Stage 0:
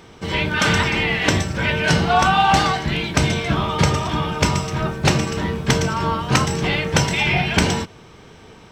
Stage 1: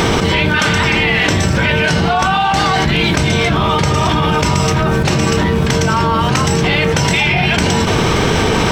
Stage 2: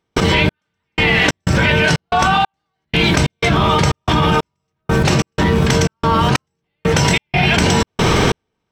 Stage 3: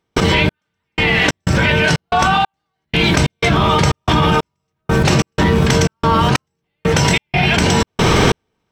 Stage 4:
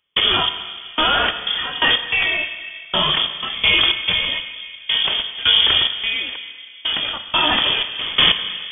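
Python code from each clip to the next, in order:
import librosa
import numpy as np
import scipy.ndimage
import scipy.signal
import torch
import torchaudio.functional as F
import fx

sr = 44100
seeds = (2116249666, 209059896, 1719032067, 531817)

y1 = fx.env_flatten(x, sr, amount_pct=100)
y1 = F.gain(torch.from_numpy(y1), -1.0).numpy()
y2 = fx.step_gate(y1, sr, bpm=92, pattern='.xx...xx.xxx', floor_db=-60.0, edge_ms=4.5)
y3 = fx.rider(y2, sr, range_db=3, speed_s=0.5)
y3 = F.gain(torch.from_numpy(y3), 1.0).numpy()
y4 = fx.tremolo_shape(y3, sr, shape='saw_down', hz=1.1, depth_pct=90)
y4 = fx.rev_plate(y4, sr, seeds[0], rt60_s=2.6, hf_ratio=0.55, predelay_ms=0, drr_db=8.0)
y4 = fx.freq_invert(y4, sr, carrier_hz=3400)
y4 = F.gain(torch.from_numpy(y4), -1.0).numpy()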